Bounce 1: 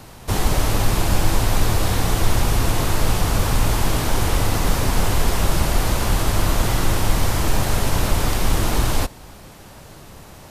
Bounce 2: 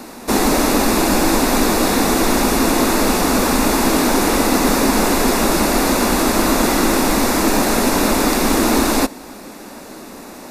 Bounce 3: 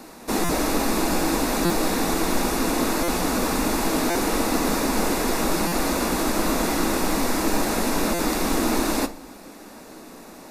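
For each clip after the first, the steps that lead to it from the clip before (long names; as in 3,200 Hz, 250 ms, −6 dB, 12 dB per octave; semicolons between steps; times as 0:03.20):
low shelf with overshoot 170 Hz −13 dB, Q 3; notch filter 3,100 Hz, Q 5.5; level +7 dB
rectangular room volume 360 cubic metres, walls furnished, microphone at 0.61 metres; buffer that repeats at 0:00.44/0:01.65/0:03.03/0:04.10/0:05.67/0:08.14, samples 256, times 8; level −8 dB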